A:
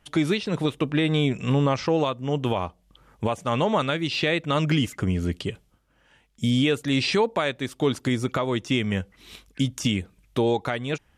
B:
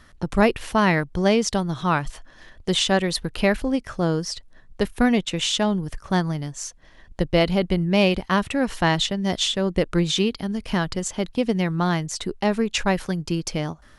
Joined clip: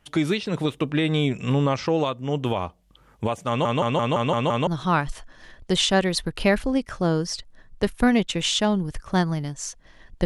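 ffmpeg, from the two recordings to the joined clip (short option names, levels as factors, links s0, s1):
-filter_complex "[0:a]apad=whole_dur=10.25,atrim=end=10.25,asplit=7[s0][s1][s2][s3][s4][s5][s6];[s0]atrim=end=3.652[s7];[s1]atrim=start=3.478:end=3.652[s8];[s2]atrim=start=3.478:end=3.652[s9];[s3]atrim=start=3.478:end=3.652[s10];[s4]atrim=start=3.478:end=3.652[s11];[s5]atrim=start=3.478:end=3.652[s12];[s6]atrim=start=3.478:end=3.652[s13];[1:a]atrim=start=1.648:end=7.23[s14];[s7][s8]acrossfade=d=0.004:c1=hsin:c2=hsin[s15];[s15][s9]acrossfade=d=0.004:c1=hsin:c2=hsin[s16];[s16][s10]acrossfade=d=0.004:c1=hsin:c2=hsin[s17];[s17][s11]acrossfade=d=0.004:c1=hsin:c2=hsin[s18];[s18][s12]acrossfade=d=0.004:c1=hsin:c2=hsin[s19];[s19][s13]acrossfade=d=0.004:c1=hsin:c2=hsin[s20];[s20][s14]acrossfade=d=0.004:c1=hsin:c2=hsin"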